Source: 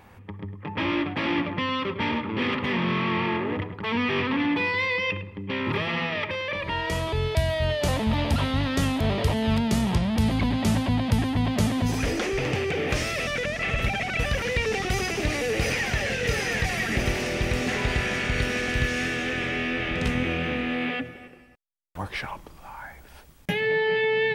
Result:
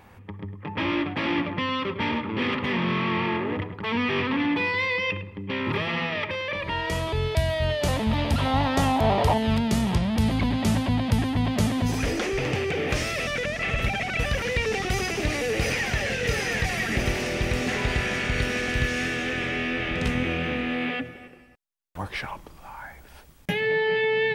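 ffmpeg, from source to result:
-filter_complex "[0:a]asettb=1/sr,asplit=3[s0][s1][s2];[s0]atrim=end=8.454[s3];[s1]atrim=start=8.45:end=9.38,asetpts=PTS-STARTPTS,afade=t=in:d=0.004:c=qsin,afade=t=out:st=0.926:d=0.004:c=qsin,equalizer=f=810:t=o:w=0.75:g=13.5[s4];[s2]atrim=start=9.376[s5];[s3][s4]acrossfade=d=0.004:c1=hsin:c2=qsin[s6];[s6][s5]acrossfade=d=0.004:c1=qsin:c2=hsin"

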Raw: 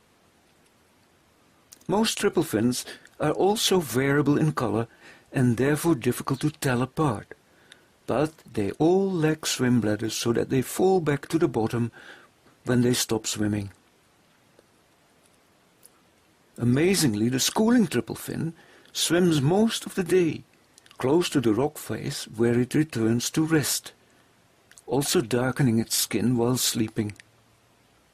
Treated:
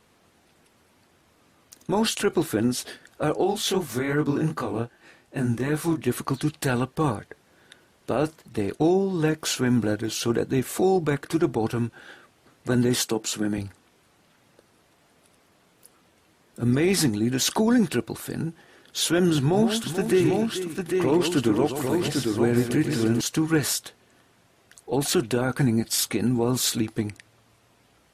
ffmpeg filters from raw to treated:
-filter_complex "[0:a]asplit=3[s0][s1][s2];[s0]afade=t=out:st=3.43:d=0.02[s3];[s1]flanger=delay=19.5:depth=6.2:speed=2.6,afade=t=in:st=3.43:d=0.02,afade=t=out:st=6.06:d=0.02[s4];[s2]afade=t=in:st=6.06:d=0.02[s5];[s3][s4][s5]amix=inputs=3:normalize=0,asettb=1/sr,asplit=3[s6][s7][s8];[s6]atrim=end=12.964[s9];[s7]atrim=start=12.96:end=13.58,asetpts=PTS-STARTPTS,afade=t=in:d=0.004:c=qsin,afade=t=out:st=0.616:d=0.004:c=qsin,highpass=f=130:w=0.5412,highpass=f=130:w=1.3066[s10];[s8]atrim=start=13.576[s11];[s9][s10]acrossfade=d=0.004:c1=hsin:c2=qsin[s12];[s12][s11]acrossfade=d=0.004:c1=qsin:c2=hsin,asettb=1/sr,asplit=3[s13][s14][s15];[s13]atrim=end=19.404[s16];[s14]atrim=start=19.4:end=23.21,asetpts=PTS-STARTPTS,afade=t=in:d=0.004:c=qsin,afade=t=out:st=3.806:d=0.004:c=qsin,aecho=1:1:126|436|799:0.398|0.282|0.631,atrim=end_sample=168021[s17];[s15]atrim=start=23.206[s18];[s16][s17]acrossfade=d=0.004:c1=hsin:c2=qsin[s19];[s19][s18]acrossfade=d=0.004:c1=qsin:c2=hsin"

